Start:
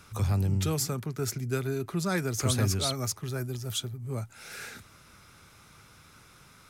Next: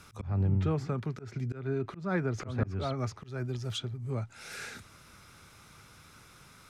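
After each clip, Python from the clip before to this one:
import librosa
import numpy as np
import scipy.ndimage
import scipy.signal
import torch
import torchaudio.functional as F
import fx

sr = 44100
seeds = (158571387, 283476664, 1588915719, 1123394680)

y = fx.env_lowpass_down(x, sr, base_hz=1700.0, full_db=-25.5)
y = fx.auto_swell(y, sr, attack_ms=200.0)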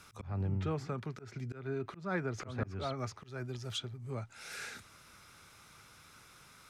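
y = fx.low_shelf(x, sr, hz=410.0, db=-6.0)
y = y * librosa.db_to_amplitude(-1.5)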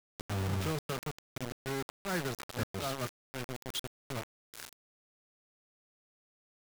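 y = fx.quant_dither(x, sr, seeds[0], bits=6, dither='none')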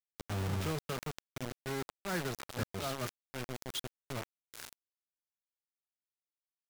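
y = fx.sustainer(x, sr, db_per_s=140.0)
y = y * librosa.db_to_amplitude(-1.5)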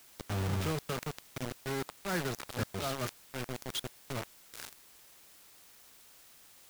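y = fx.quant_dither(x, sr, seeds[1], bits=10, dither='triangular')
y = y * librosa.db_to_amplitude(2.0)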